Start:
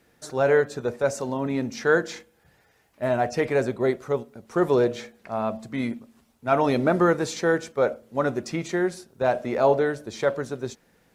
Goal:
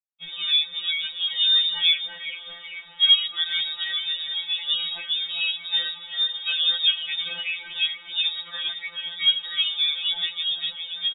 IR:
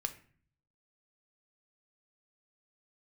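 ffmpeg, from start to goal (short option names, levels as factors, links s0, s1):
-filter_complex "[0:a]asubboost=boost=2:cutoff=120,asplit=6[s0][s1][s2][s3][s4][s5];[s1]adelay=396,afreqshift=33,volume=0.447[s6];[s2]adelay=792,afreqshift=66,volume=0.188[s7];[s3]adelay=1188,afreqshift=99,volume=0.0785[s8];[s4]adelay=1584,afreqshift=132,volume=0.0331[s9];[s5]adelay=1980,afreqshift=165,volume=0.014[s10];[s0][s6][s7][s8][s9][s10]amix=inputs=6:normalize=0,asplit=2[s11][s12];[s12]acompressor=threshold=0.0178:ratio=10,volume=1.12[s13];[s11][s13]amix=inputs=2:normalize=0,alimiter=limit=0.237:level=0:latency=1:release=469,acrusher=bits=6:mix=0:aa=0.000001,aecho=1:1:3:0.69,lowpass=f=3300:t=q:w=0.5098,lowpass=f=3300:t=q:w=0.6013,lowpass=f=3300:t=q:w=0.9,lowpass=f=3300:t=q:w=2.563,afreqshift=-3900,afftfilt=real='re*2.83*eq(mod(b,8),0)':imag='im*2.83*eq(mod(b,8),0)':win_size=2048:overlap=0.75"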